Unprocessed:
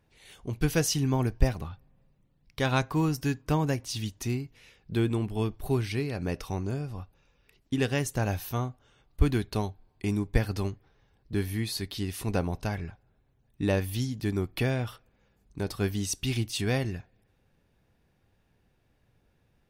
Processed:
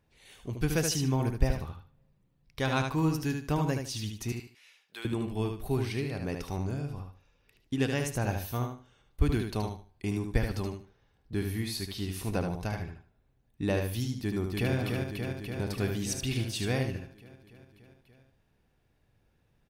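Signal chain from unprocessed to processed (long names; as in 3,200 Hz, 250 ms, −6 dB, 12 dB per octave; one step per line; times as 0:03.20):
0:04.32–0:05.05: high-pass filter 1,100 Hz 12 dB per octave
0:14.17–0:14.74: delay throw 290 ms, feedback 75%, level −3.5 dB
repeating echo 75 ms, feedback 24%, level −5.5 dB
level −3 dB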